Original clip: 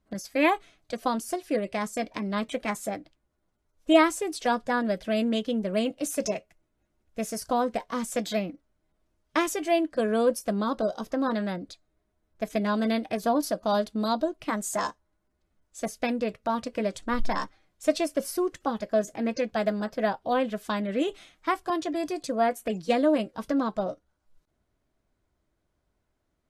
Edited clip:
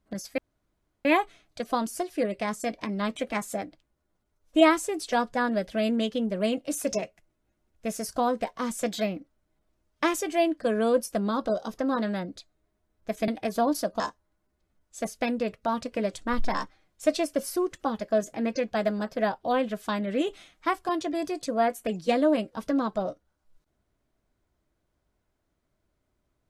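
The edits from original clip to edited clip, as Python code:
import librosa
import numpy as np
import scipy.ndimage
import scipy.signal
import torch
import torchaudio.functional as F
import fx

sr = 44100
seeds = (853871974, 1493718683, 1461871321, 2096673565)

y = fx.edit(x, sr, fx.insert_room_tone(at_s=0.38, length_s=0.67),
    fx.cut(start_s=12.61, length_s=0.35),
    fx.cut(start_s=13.68, length_s=1.13), tone=tone)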